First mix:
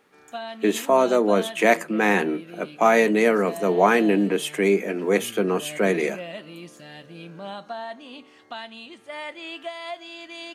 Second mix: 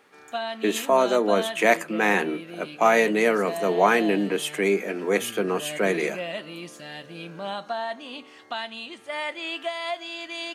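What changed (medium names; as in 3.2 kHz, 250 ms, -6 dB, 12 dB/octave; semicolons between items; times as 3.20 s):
background +5.0 dB; master: add bass shelf 360 Hz -6 dB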